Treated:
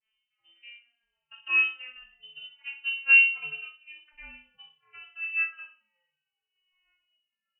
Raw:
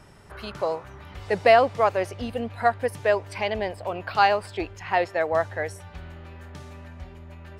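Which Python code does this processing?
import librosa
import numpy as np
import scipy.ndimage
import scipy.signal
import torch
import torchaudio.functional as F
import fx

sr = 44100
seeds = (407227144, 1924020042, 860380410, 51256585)

p1 = fx.vocoder_glide(x, sr, note=57, semitones=10)
p2 = scipy.signal.sosfilt(scipy.signal.butter(2, 280.0, 'highpass', fs=sr, output='sos'), p1)
p3 = fx.level_steps(p2, sr, step_db=15)
p4 = p2 + (p3 * librosa.db_to_amplitude(2.5))
p5 = fx.resonator_bank(p4, sr, root=54, chord='minor', decay_s=0.37)
p6 = p5 + fx.echo_feedback(p5, sr, ms=61, feedback_pct=38, wet_db=-9.0, dry=0)
p7 = fx.freq_invert(p6, sr, carrier_hz=3300)
y = fx.band_widen(p7, sr, depth_pct=70)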